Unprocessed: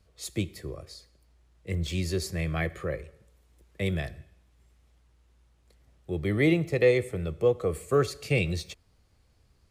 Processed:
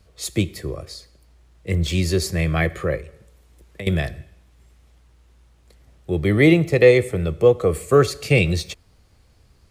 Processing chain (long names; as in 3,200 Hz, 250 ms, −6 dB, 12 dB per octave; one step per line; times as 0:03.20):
0:02.97–0:03.87: downward compressor 6 to 1, threshold −41 dBFS, peak gain reduction 15 dB
level +9 dB